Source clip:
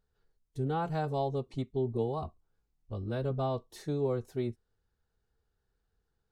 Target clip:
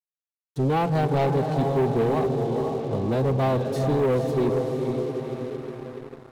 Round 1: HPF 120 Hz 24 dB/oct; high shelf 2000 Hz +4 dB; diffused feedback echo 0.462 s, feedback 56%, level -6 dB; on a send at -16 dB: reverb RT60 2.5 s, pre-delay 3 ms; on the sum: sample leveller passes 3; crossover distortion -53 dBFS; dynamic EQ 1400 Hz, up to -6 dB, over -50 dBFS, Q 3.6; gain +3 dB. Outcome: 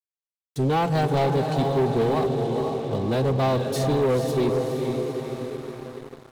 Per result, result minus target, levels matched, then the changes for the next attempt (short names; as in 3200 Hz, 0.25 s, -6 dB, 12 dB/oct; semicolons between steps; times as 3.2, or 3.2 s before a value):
crossover distortion: distortion +9 dB; 4000 Hz band +5.5 dB
change: crossover distortion -62.5 dBFS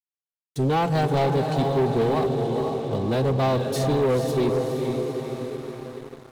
4000 Hz band +5.5 dB
change: high shelf 2000 Hz -6.5 dB